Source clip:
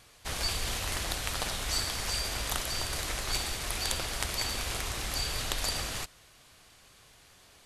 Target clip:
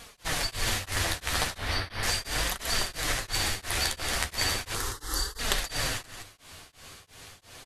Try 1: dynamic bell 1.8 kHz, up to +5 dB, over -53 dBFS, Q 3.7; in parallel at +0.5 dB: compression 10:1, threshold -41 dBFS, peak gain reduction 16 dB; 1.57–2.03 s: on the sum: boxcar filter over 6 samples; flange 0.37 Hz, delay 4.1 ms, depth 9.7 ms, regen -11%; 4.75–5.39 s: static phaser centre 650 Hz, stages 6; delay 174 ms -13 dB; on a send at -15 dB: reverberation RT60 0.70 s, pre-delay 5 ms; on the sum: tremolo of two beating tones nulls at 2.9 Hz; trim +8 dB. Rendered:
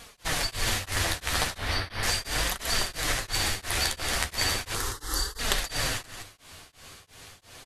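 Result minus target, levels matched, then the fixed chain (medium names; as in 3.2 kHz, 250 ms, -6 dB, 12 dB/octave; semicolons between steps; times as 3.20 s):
compression: peak gain reduction -8 dB
dynamic bell 1.8 kHz, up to +5 dB, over -53 dBFS, Q 3.7; in parallel at +0.5 dB: compression 10:1, threshold -50 dBFS, peak gain reduction 24 dB; 1.57–2.03 s: on the sum: boxcar filter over 6 samples; flange 0.37 Hz, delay 4.1 ms, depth 9.7 ms, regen -11%; 4.75–5.39 s: static phaser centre 650 Hz, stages 6; delay 174 ms -13 dB; on a send at -15 dB: reverberation RT60 0.70 s, pre-delay 5 ms; on the sum: tremolo of two beating tones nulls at 2.9 Hz; trim +8 dB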